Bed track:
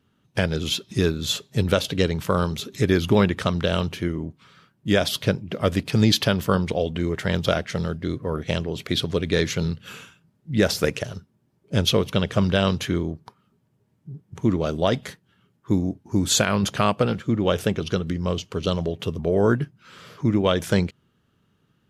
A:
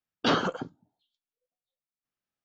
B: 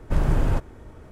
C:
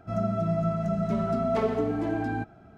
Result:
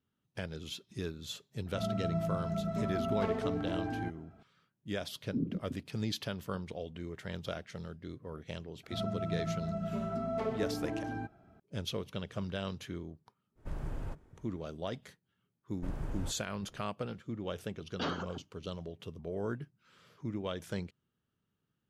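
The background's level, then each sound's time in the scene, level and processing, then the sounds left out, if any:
bed track -17.5 dB
1.66 s: add C -7.5 dB
5.09 s: add A -2 dB + inverse Chebyshev low-pass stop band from 710 Hz, stop band 50 dB
8.83 s: add C -9 dB
13.55 s: add B -18 dB, fades 0.05 s
15.72 s: add B -17.5 dB
17.75 s: add A -11.5 dB

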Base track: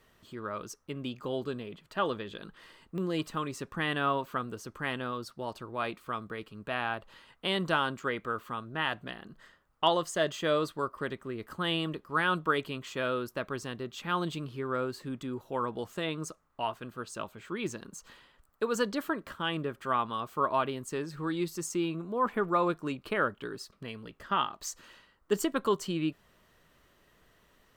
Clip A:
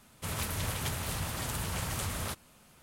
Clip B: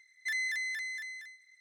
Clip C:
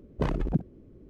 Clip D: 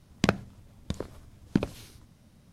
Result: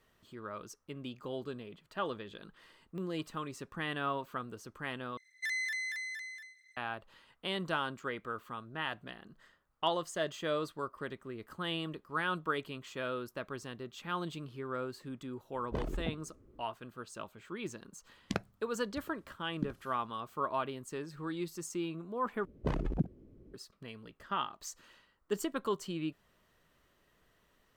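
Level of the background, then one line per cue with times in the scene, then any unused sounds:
base track -6 dB
5.17 s: replace with B -2 dB
15.53 s: add C -8 dB + peaking EQ 160 Hz -6 dB
18.07 s: add D -10.5 dB + spectral noise reduction 11 dB
22.45 s: replace with C -5.5 dB
not used: A

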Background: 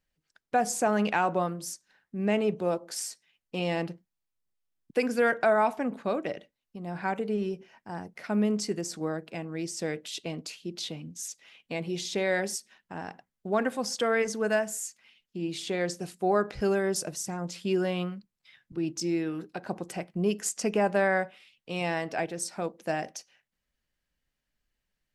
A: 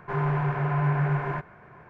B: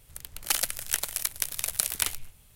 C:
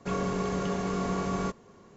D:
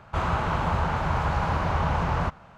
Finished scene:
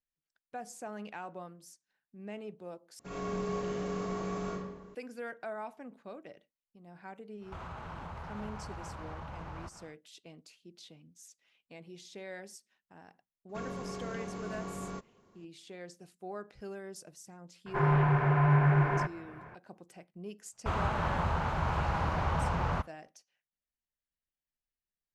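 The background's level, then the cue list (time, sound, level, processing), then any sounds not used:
background -17 dB
2.99 s: replace with C -13.5 dB + algorithmic reverb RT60 1.2 s, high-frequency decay 0.65×, pre-delay 10 ms, DRR -6.5 dB
7.39 s: add D -5.5 dB, fades 0.10 s + compression 4:1, threshold -37 dBFS
13.49 s: add C -10.5 dB
17.66 s: add A
20.52 s: add D -6 dB + expander -38 dBFS
not used: B

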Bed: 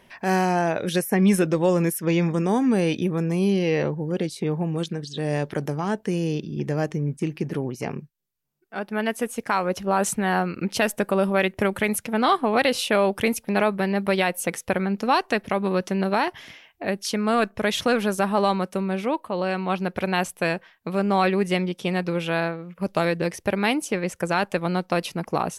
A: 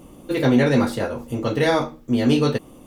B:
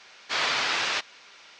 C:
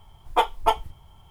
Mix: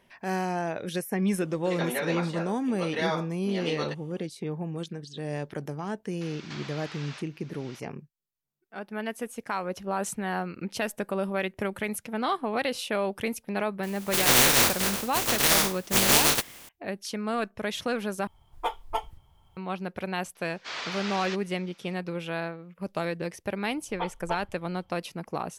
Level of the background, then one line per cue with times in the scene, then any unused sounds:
bed -8 dB
1.36 s: add A -6.5 dB + band-pass 620–6300 Hz
6.21 s: add B -17.5 dB + three bands compressed up and down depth 100%
13.83 s: add A -3 dB + spectral contrast reduction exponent 0.17
18.27 s: replace with C -9.5 dB
20.35 s: add B -9.5 dB
23.63 s: add C -13 dB + steep low-pass 4.3 kHz

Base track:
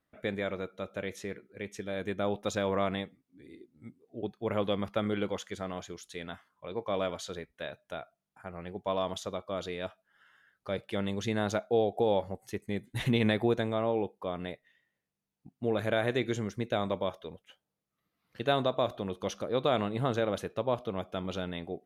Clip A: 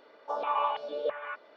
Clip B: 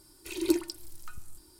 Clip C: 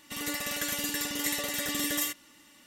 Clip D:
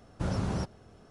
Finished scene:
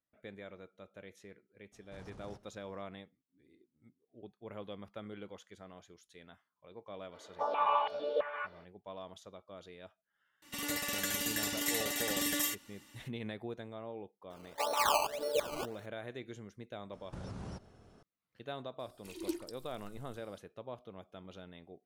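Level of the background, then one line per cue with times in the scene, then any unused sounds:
base track -15 dB
1.72 s: add D -13 dB + saturation -37 dBFS
7.11 s: add A -1 dB, fades 0.05 s
10.42 s: add C -3 dB
14.30 s: add A -1 dB + decimation with a swept rate 17× 1.8 Hz
16.93 s: add D -5 dB + compression, threshold -35 dBFS
18.79 s: add B -12 dB

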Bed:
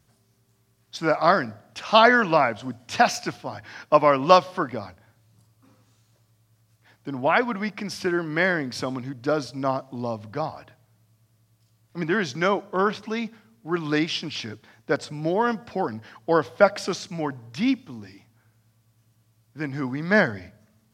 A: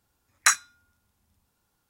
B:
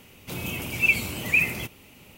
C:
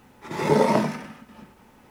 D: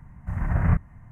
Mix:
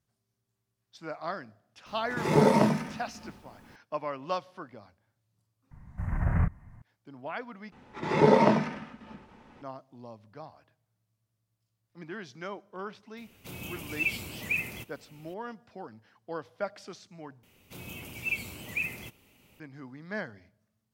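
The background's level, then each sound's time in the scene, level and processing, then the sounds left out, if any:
bed -17 dB
1.86 s: add C -3.5 dB + tone controls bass +5 dB, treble +1 dB
5.71 s: add D -4 dB + peak limiter -11 dBFS
7.72 s: replace with C -1 dB + low-pass 4.5 kHz
13.17 s: add B -9 dB
17.43 s: replace with B -11 dB
not used: A

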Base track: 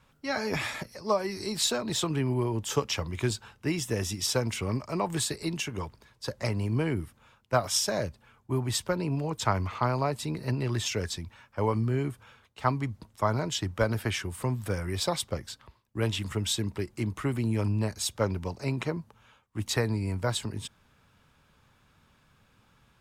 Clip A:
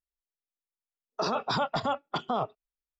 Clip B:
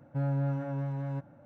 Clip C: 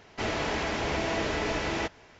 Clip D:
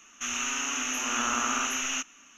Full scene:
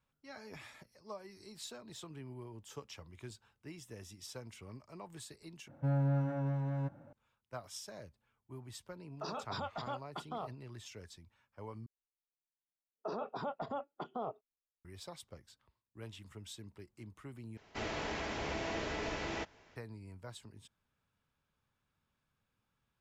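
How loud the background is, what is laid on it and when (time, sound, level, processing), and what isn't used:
base track -20 dB
5.68 s: replace with B -1.5 dB
8.02 s: add A -12.5 dB
11.86 s: replace with A -15.5 dB + FFT filter 110 Hz 0 dB, 420 Hz +9 dB, 3.3 kHz -6 dB, 5.3 kHz -9 dB
17.57 s: replace with C -9 dB
not used: D

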